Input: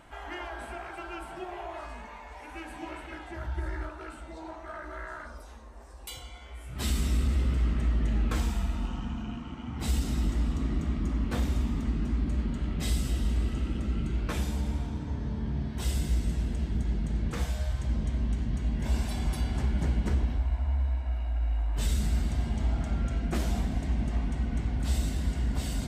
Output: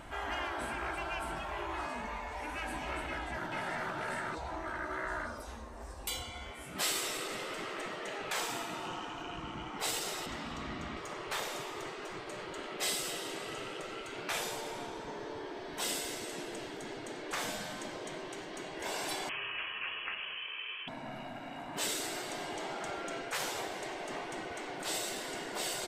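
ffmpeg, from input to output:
ffmpeg -i in.wav -filter_complex "[0:a]asplit=2[link_01][link_02];[link_02]afade=type=in:start_time=3.07:duration=0.01,afade=type=out:start_time=3.91:duration=0.01,aecho=0:1:440|880|1320:0.944061|0.141609|0.0212414[link_03];[link_01][link_03]amix=inputs=2:normalize=0,asettb=1/sr,asplit=3[link_04][link_05][link_06];[link_04]atrim=end=10.264[link_07];[link_05]atrim=start=10.26:end=10.97,asetpts=PTS-STARTPTS,afade=type=in:duration=0.004:curve=qsin,afade=type=out:start_time=0.706:duration=0.004:curve=qsin,acrossover=split=510 5700:gain=0.141 1 0.251[link_08][link_09][link_10];[link_08][link_09][link_10]amix=inputs=3:normalize=0[link_11];[link_06]atrim=start=10.966[link_12];[link_07][link_11]acrossfade=duration=0.004:curve1=hsin:curve2=qsin[link_13];[link_13][link_12]acrossfade=duration=0.004:curve1=qsin:curve2=hsin,asettb=1/sr,asplit=3[link_14][link_15][link_16];[link_14]atrim=end=19.294[link_17];[link_15]atrim=start=19.29:end=20.88,asetpts=PTS-STARTPTS,afade=type=in:duration=0.004:curve=qsin,afade=type=out:start_time=1.586:duration=0.004:curve=qsin,lowpass=frequency=2800:width_type=q:width=0.5098,lowpass=frequency=2800:width_type=q:width=0.6013,lowpass=frequency=2800:width_type=q:width=0.9,lowpass=frequency=2800:width_type=q:width=2.563,afreqshift=-3300[link_18];[link_16]atrim=start=20.876[link_19];[link_17][link_18]acrossfade=duration=0.004:curve1=hsin:curve2=qsin[link_20];[link_20][link_19]acrossfade=duration=0.004:curve1=qsin:curve2=hsin,afftfilt=real='re*lt(hypot(re,im),0.0501)':imag='im*lt(hypot(re,im),0.0501)':win_size=1024:overlap=0.75,volume=5dB" out.wav

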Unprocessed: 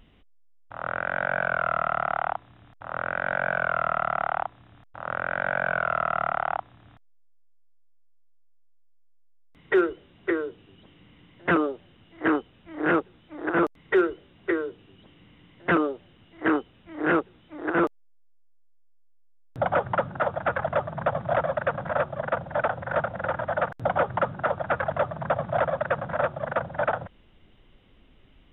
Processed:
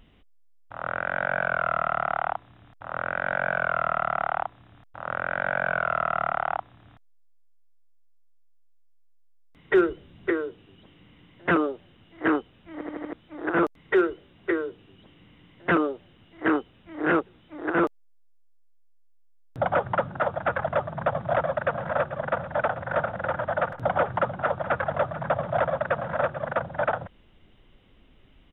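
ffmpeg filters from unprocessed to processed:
ffmpeg -i in.wav -filter_complex "[0:a]asettb=1/sr,asplit=3[link_01][link_02][link_03];[link_01]atrim=end=9.734[link_04];[link_02]atrim=start=9.73:end=10.3,asetpts=PTS-STARTPTS,afade=type=in:duration=0.004:curve=qsin,afade=type=out:start_time=0.566:duration=0.004:curve=qsin,bass=frequency=250:gain=8,treble=frequency=4000:gain=3[link_05];[link_03]atrim=start=10.296[link_06];[link_04][link_05]acrossfade=duration=0.004:curve1=hsin:curve2=qsin[link_07];[link_07][link_06]acrossfade=duration=0.004:curve1=qsin:curve2=hsin,asplit=3[link_08][link_09][link_10];[link_08]afade=type=out:start_time=21.63:duration=0.02[link_11];[link_09]aecho=1:1:439:0.211,afade=type=in:start_time=21.63:duration=0.02,afade=type=out:start_time=26.46:duration=0.02[link_12];[link_10]afade=type=in:start_time=26.46:duration=0.02[link_13];[link_11][link_12][link_13]amix=inputs=3:normalize=0,asplit=6[link_14][link_15][link_16][link_17][link_18][link_19];[link_14]atrim=end=12.812[link_20];[link_15]atrim=start=12.728:end=12.812[link_21];[link_16]atrim=start=12.728:end=12.812[link_22];[link_17]atrim=start=12.728:end=12.812[link_23];[link_18]atrim=start=12.728:end=12.812[link_24];[link_19]atrim=start=13.128[link_25];[link_20][link_21]acrossfade=duration=0.004:curve1=hsin:curve2=hsin[link_26];[link_26][link_22]acrossfade=duration=0.004:curve1=hsin:curve2=hsin[link_27];[link_27][link_23]acrossfade=duration=0.004:curve1=hsin:curve2=hsin[link_28];[link_28][link_24]acrossfade=duration=0.004:curve1=hsin:curve2=hsin[link_29];[link_29][link_25]acrossfade=duration=0.004:curve1=hsin:curve2=hsin" out.wav

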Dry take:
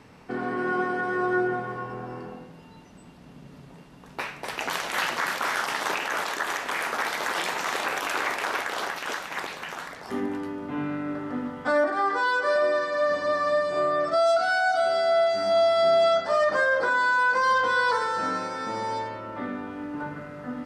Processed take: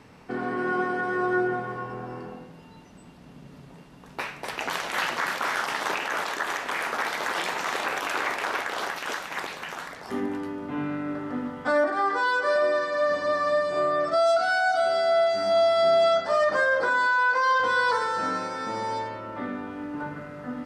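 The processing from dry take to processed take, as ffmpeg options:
ffmpeg -i in.wav -filter_complex "[0:a]asettb=1/sr,asplit=3[link_01][link_02][link_03];[link_01]atrim=end=4.504[link_04];[link_02]atrim=start=4.5:end=8.81,asetpts=PTS-STARTPTS,afade=type=in:duration=0.004:curve=qsin,afade=type=out:start_time=4.306:duration=0.004:curve=qsin,highshelf=frequency=5900:gain=-4[link_05];[link_03]atrim=start=8.806[link_06];[link_04][link_05]acrossfade=duration=0.004:curve1=hsin:curve2=qsin[link_07];[link_07][link_06]acrossfade=duration=0.004:curve1=qsin:curve2=hsin,asettb=1/sr,asplit=3[link_08][link_09][link_10];[link_08]atrim=end=17.074[link_11];[link_09]atrim=start=17.07:end=17.6,asetpts=PTS-STARTPTS,afade=type=in:duration=0.004:curve=qsin,afade=type=out:start_time=0.526:duration=0.004:curve=qsin,highpass=400,lowpass=6200[link_12];[link_10]atrim=start=17.596[link_13];[link_11][link_12]acrossfade=duration=0.004:curve1=hsin:curve2=qsin[link_14];[link_14][link_13]acrossfade=duration=0.004:curve1=qsin:curve2=hsin" out.wav

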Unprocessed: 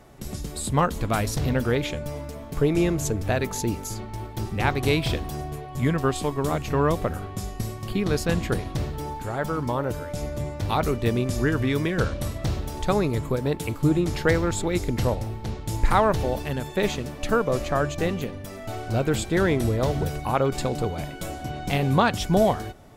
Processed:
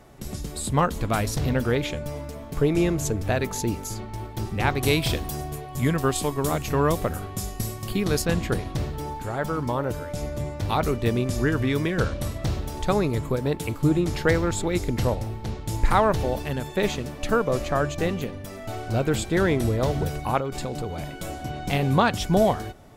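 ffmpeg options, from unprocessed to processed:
ffmpeg -i in.wav -filter_complex "[0:a]asettb=1/sr,asplit=3[link_01][link_02][link_03];[link_01]atrim=end=4.814[link_04];[link_02]atrim=start=4.81:end=8.22,asetpts=PTS-STARTPTS,afade=type=in:duration=0.004:curve=qsin,afade=type=out:start_time=3.406:duration=0.004:curve=qsin,highshelf=frequency=6100:gain=10[link_05];[link_03]atrim=start=8.216[link_06];[link_04][link_05]acrossfade=duration=0.004:curve1=hsin:curve2=qsin[link_07];[link_07][link_06]acrossfade=duration=0.004:curve1=qsin:curve2=hsin,asettb=1/sr,asplit=3[link_08][link_09][link_10];[link_08]atrim=end=20.384[link_11];[link_09]atrim=start=20.38:end=21.3,asetpts=PTS-STARTPTS,afade=type=in:duration=0.004:curve=qsin,afade=type=out:start_time=0.916:duration=0.004:curve=qsin,acompressor=threshold=-27dB:ratio=2.5:attack=3.2:release=140:knee=1:detection=peak[link_12];[link_10]atrim=start=21.296[link_13];[link_11][link_12]acrossfade=duration=0.004:curve1=hsin:curve2=qsin[link_14];[link_14][link_13]acrossfade=duration=0.004:curve1=qsin:curve2=hsin" out.wav

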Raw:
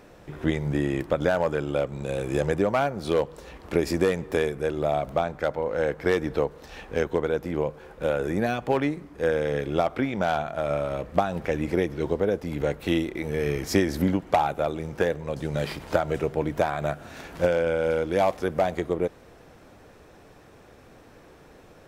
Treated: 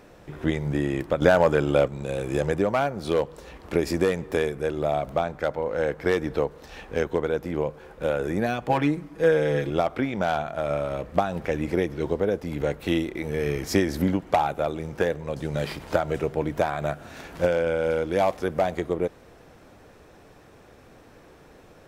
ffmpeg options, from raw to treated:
ffmpeg -i in.wav -filter_complex "[0:a]asettb=1/sr,asplit=3[link_01][link_02][link_03];[link_01]atrim=end=8.694[link_04];[link_02]atrim=start=8.69:end=9.7,asetpts=PTS-STARTPTS,afade=type=in:duration=0.004:curve=qsin,afade=type=out:start_time=1.006:duration=0.004:curve=qsin,aecho=1:1:6.2:0.86,atrim=end_sample=44541[link_05];[link_03]atrim=start=9.696[link_06];[link_04][link_05]acrossfade=duration=0.004:curve1=hsin:curve2=qsin[link_07];[link_07][link_06]acrossfade=duration=0.004:curve1=qsin:curve2=hsin,asplit=3[link_08][link_09][link_10];[link_08]atrim=end=1.222[link_11];[link_09]atrim=start=1.218:end=1.882,asetpts=PTS-STARTPTS,volume=5.5dB[link_12];[link_10]atrim=start=1.878[link_13];[link_11][link_12]acrossfade=duration=0.004:curve1=hsin:curve2=hsin[link_14];[link_14][link_13]acrossfade=duration=0.004:curve1=hsin:curve2=hsin" out.wav

